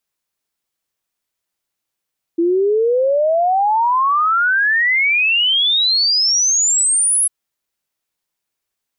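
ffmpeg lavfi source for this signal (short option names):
-f lavfi -i "aevalsrc='0.251*clip(min(t,4.9-t)/0.01,0,1)*sin(2*PI*330*4.9/log(11000/330)*(exp(log(11000/330)*t/4.9)-1))':d=4.9:s=44100"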